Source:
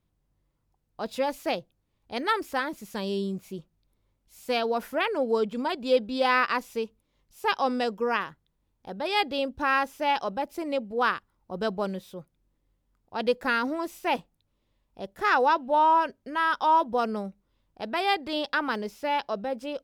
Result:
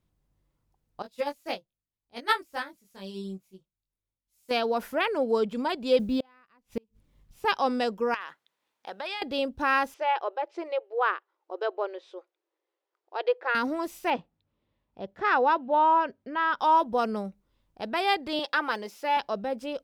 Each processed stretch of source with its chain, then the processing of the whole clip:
1.02–4.51 high shelf 4500 Hz +6 dB + doubler 21 ms -2.5 dB + upward expander 2.5:1, over -35 dBFS
5.99–7.45 tone controls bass +11 dB, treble -8 dB + companded quantiser 8-bit + flipped gate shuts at -19 dBFS, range -37 dB
8.14–9.22 HPF 460 Hz + bell 2300 Hz +8.5 dB 3 oct + compressor 8:1, threshold -31 dBFS
9.94–13.55 treble ducked by the level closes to 2700 Hz, closed at -23.5 dBFS + brick-wall FIR high-pass 320 Hz + air absorption 120 m
14.1–16.59 HPF 68 Hz + air absorption 190 m
18.39–19.17 HPF 330 Hz + comb 5.8 ms, depth 36%
whole clip: dry

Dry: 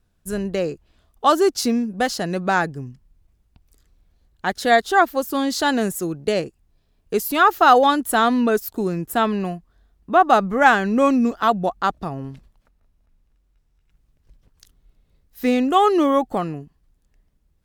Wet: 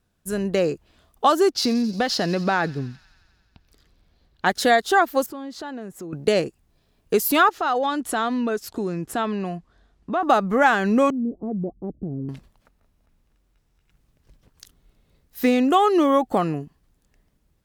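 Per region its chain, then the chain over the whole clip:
1.52–4.46 resonant high shelf 6000 Hz -8.5 dB, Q 1.5 + compressor 3:1, threshold -22 dBFS + thin delay 88 ms, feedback 73%, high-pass 3100 Hz, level -15 dB
5.26–6.13 LPF 1400 Hz 6 dB/oct + compressor 3:1, threshold -41 dBFS
7.49–10.23 LPF 7300 Hz + compressor 2.5:1, threshold -30 dBFS
11.1–12.29 inverse Chebyshev low-pass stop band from 1400 Hz, stop band 60 dB + compressor 2.5:1, threshold -29 dBFS
whole clip: compressor 3:1, threshold -20 dBFS; low shelf 68 Hz -11 dB; AGC gain up to 5 dB

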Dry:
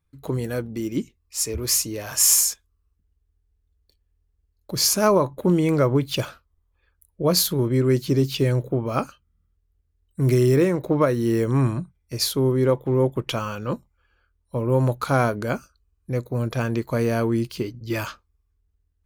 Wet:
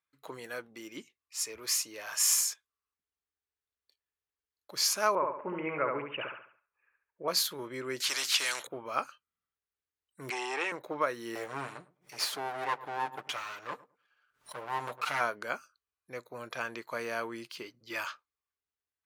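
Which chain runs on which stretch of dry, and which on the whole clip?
5.15–7.28 steep low-pass 2800 Hz 96 dB/oct + feedback echo 70 ms, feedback 38%, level -4 dB
8–8.67 weighting filter ITU-R 468 + spectral compressor 2:1
10.3–10.72 sample leveller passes 1 + speaker cabinet 500–8800 Hz, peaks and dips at 560 Hz -7 dB, 800 Hz +8 dB, 2700 Hz +7 dB, 8300 Hz +3 dB
11.35–15.21 minimum comb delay 6.7 ms + darkening echo 0.103 s, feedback 21%, low-pass 870 Hz, level -16.5 dB + backwards sustainer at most 150 dB/s
whole clip: HPF 1400 Hz 12 dB/oct; tilt -3.5 dB/oct; gain +1 dB

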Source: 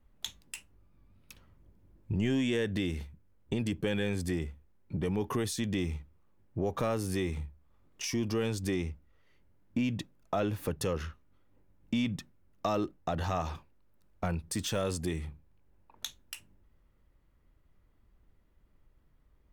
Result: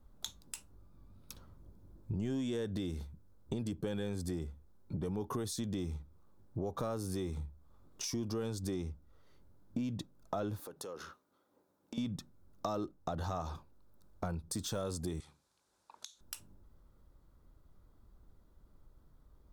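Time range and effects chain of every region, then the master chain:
10.6–11.98 HPF 340 Hz + compressor 5:1, threshold -44 dBFS
15.2–16.21 weighting filter ITU-R 468 + compressor, threshold -49 dBFS
whole clip: band shelf 2300 Hz -10.5 dB 1 oct; compressor 2:1, threshold -46 dBFS; gain +4 dB

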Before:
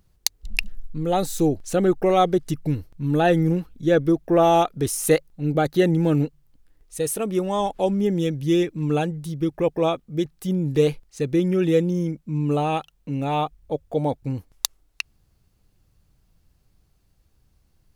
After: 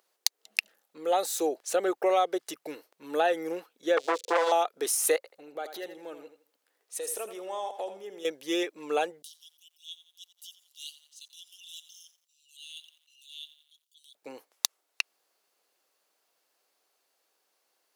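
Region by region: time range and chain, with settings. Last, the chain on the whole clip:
3.97–4.52 switching spikes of -17 dBFS + EQ curve 340 Hz 0 dB, 500 Hz +9 dB, 720 Hz -29 dB, 2000 Hz -11 dB, 3600 Hz +3 dB, 7700 Hz -5 dB, 14000 Hz -26 dB + core saturation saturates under 1200 Hz
5.16–8.25 compressor 8:1, threshold -29 dBFS + feedback echo 82 ms, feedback 26%, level -10 dB
9.22–14.15 Chebyshev high-pass 2800 Hz, order 10 + transient shaper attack -10 dB, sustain -3 dB + lo-fi delay 87 ms, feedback 55%, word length 10-bit, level -14 dB
whole clip: HPF 460 Hz 24 dB/oct; compressor 5:1, threshold -21 dBFS

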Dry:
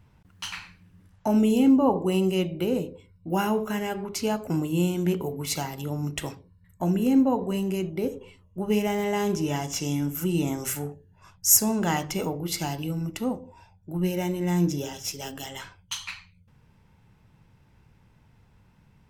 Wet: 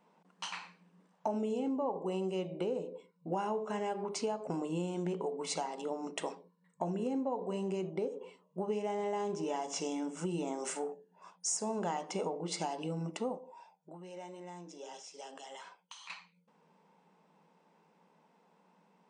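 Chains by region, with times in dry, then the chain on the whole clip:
13.38–16.1 low shelf 400 Hz -11 dB + compressor, threshold -41 dBFS
whole clip: FFT band-pass 160–9600 Hz; band shelf 680 Hz +9 dB; compressor 6:1, threshold -25 dBFS; gain -7 dB

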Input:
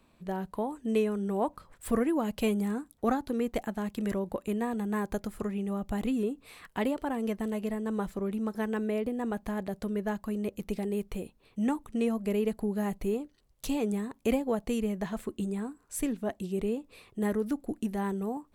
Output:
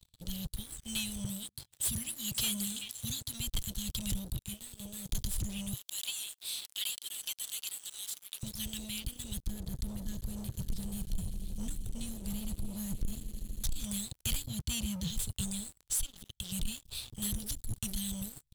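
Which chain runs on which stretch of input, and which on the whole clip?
1.24–3.4 HPF 130 Hz + delay with a stepping band-pass 0.128 s, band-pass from 390 Hz, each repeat 1.4 oct, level -5 dB + upward compressor, threshold -43 dBFS
4.39–5.09 bell 130 Hz +3.5 dB 1.9 oct + resonator 190 Hz, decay 0.17 s, mix 80%
5.73–8.43 steep high-pass 1700 Hz 48 dB/oct + upward compressor, threshold -51 dBFS
9.42–13.84 resonant high shelf 1900 Hz -9.5 dB, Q 3 + swelling echo 80 ms, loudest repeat 5, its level -18 dB
14.47–15.1 HPF 69 Hz 24 dB/oct + tilt -1.5 dB/oct
15.81–16.52 bell 3200 Hz +7.5 dB 0.42 oct + compressor 4:1, threshold -42 dBFS
whole clip: Chebyshev band-stop 130–3300 Hz, order 4; sample leveller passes 5

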